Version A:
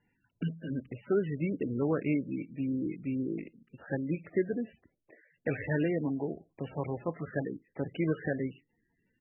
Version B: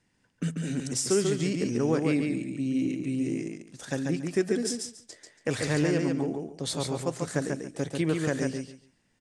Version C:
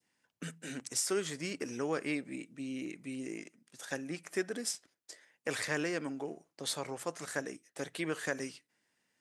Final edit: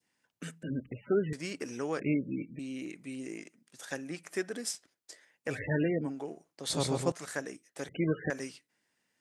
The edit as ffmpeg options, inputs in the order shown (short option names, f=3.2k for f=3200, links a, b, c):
-filter_complex "[0:a]asplit=4[a][b][c][d];[2:a]asplit=6[e][f][g][h][i][j];[e]atrim=end=0.632[k];[a]atrim=start=0.628:end=1.332[l];[f]atrim=start=1.328:end=2.002[m];[b]atrim=start=1.998:end=2.592[n];[g]atrim=start=2.588:end=5.6[o];[c]atrim=start=5.44:end=6.16[p];[h]atrim=start=6:end=6.702[q];[1:a]atrim=start=6.698:end=7.122[r];[i]atrim=start=7.118:end=7.892[s];[d]atrim=start=7.888:end=8.302[t];[j]atrim=start=8.298[u];[k][l]acrossfade=d=0.004:c1=hsin:c2=hsin[v];[v][m]acrossfade=d=0.004:c1=hsin:c2=hsin[w];[w][n]acrossfade=d=0.004:c1=hsin:c2=hsin[x];[x][o]acrossfade=d=0.004:c1=hsin:c2=hsin[y];[y][p]acrossfade=d=0.16:c1=tri:c2=tri[z];[z][q]acrossfade=d=0.16:c1=tri:c2=tri[aa];[aa][r]acrossfade=d=0.004:c1=hsin:c2=hsin[ab];[ab][s]acrossfade=d=0.004:c1=hsin:c2=hsin[ac];[ac][t]acrossfade=d=0.004:c1=hsin:c2=hsin[ad];[ad][u]acrossfade=d=0.004:c1=hsin:c2=hsin"